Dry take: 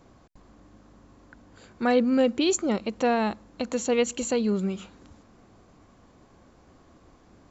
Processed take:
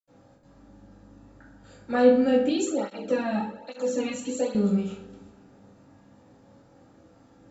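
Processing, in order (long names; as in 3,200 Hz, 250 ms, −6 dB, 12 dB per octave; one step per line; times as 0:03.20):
bucket-brigade delay 121 ms, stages 4,096, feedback 60%, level −18 dB
convolution reverb RT60 0.60 s, pre-delay 76 ms
0:02.49–0:04.55: through-zero flanger with one copy inverted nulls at 1.2 Hz, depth 2.4 ms
level −5.5 dB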